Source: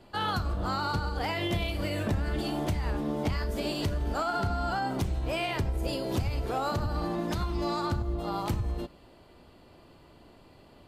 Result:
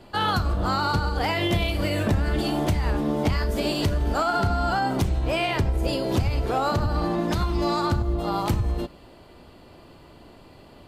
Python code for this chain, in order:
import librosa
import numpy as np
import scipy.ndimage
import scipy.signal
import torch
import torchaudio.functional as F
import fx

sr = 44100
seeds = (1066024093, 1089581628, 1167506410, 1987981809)

y = fx.high_shelf(x, sr, hz=8300.0, db=-5.0, at=(5.09, 7.34))
y = y * 10.0 ** (6.5 / 20.0)